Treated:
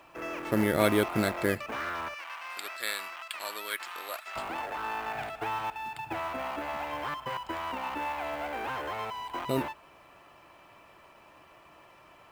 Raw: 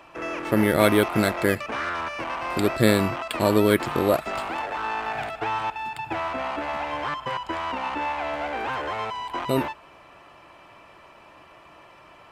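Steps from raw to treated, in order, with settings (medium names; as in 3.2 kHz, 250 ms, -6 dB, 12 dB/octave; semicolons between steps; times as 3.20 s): 2.14–4.36 s: high-pass 1.4 kHz 12 dB/octave; companded quantiser 6-bit; trim -6 dB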